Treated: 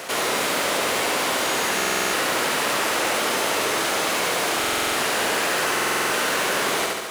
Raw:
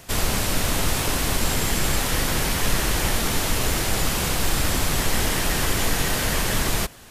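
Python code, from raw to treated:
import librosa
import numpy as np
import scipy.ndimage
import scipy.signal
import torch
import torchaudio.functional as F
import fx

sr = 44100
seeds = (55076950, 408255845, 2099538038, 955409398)

p1 = fx.high_shelf(x, sr, hz=7800.0, db=-6.0)
p2 = fx.sample_hold(p1, sr, seeds[0], rate_hz=9700.0, jitter_pct=0)
p3 = p1 + F.gain(torch.from_numpy(p2), -7.0).numpy()
p4 = scipy.signal.sosfilt(scipy.signal.butter(2, 450.0, 'highpass', fs=sr, output='sos'), p3)
p5 = fx.formant_shift(p4, sr, semitones=-2)
p6 = p5 + fx.echo_feedback(p5, sr, ms=71, feedback_pct=46, wet_db=-3.5, dry=0)
p7 = fx.buffer_glitch(p6, sr, at_s=(1.76, 4.59, 5.73), block=2048, repeats=7)
y = fx.env_flatten(p7, sr, amount_pct=50)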